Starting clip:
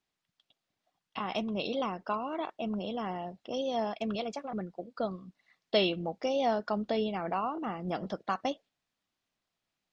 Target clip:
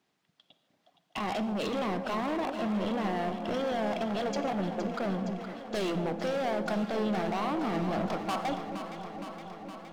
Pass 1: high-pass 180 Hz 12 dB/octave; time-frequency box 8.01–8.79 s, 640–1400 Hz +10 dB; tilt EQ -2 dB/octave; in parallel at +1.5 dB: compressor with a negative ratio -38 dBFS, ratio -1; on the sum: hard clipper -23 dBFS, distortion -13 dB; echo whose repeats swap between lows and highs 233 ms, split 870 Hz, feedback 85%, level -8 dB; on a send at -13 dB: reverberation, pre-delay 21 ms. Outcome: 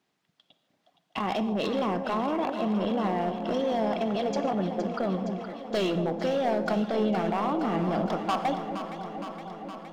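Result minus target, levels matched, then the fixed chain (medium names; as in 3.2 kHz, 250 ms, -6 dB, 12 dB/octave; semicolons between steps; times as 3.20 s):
hard clipper: distortion -6 dB
high-pass 180 Hz 12 dB/octave; time-frequency box 8.01–8.79 s, 640–1400 Hz +10 dB; tilt EQ -2 dB/octave; in parallel at +1.5 dB: compressor with a negative ratio -38 dBFS, ratio -1; on the sum: hard clipper -29.5 dBFS, distortion -7 dB; echo whose repeats swap between lows and highs 233 ms, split 870 Hz, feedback 85%, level -8 dB; on a send at -13 dB: reverberation, pre-delay 21 ms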